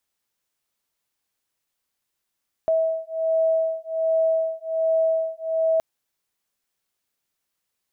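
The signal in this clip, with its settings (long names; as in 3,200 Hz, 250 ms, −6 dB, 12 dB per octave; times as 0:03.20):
two tones that beat 647 Hz, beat 1.3 Hz, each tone −22.5 dBFS 3.12 s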